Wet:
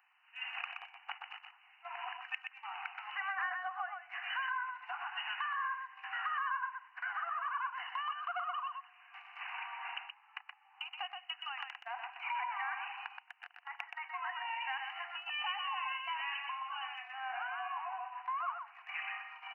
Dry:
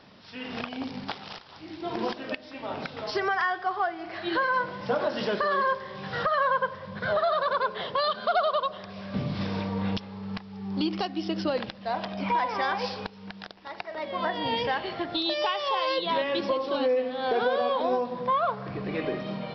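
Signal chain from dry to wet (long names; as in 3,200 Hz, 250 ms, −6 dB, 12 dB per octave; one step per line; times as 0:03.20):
linear-phase brick-wall band-pass 700–3,000 Hz
downward compressor 2 to 1, threshold −39 dBFS, peak gain reduction 9.5 dB
noise gate −43 dBFS, range −12 dB
spectral tilt +4.5 dB per octave
on a send: single-tap delay 124 ms −5.5 dB
on the sum: level −4 dB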